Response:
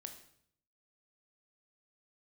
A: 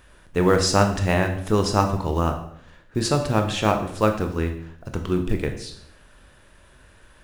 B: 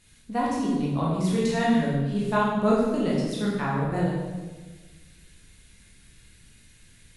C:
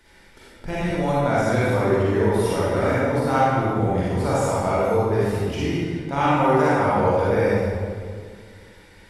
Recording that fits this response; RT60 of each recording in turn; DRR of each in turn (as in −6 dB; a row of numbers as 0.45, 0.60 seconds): A; 0.65, 1.3, 2.0 seconds; 5.0, −6.0, −9.0 decibels